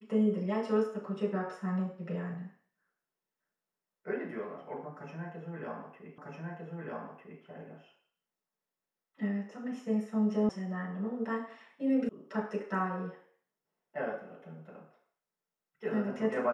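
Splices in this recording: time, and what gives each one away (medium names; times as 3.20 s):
6.18 s: repeat of the last 1.25 s
10.49 s: sound stops dead
12.09 s: sound stops dead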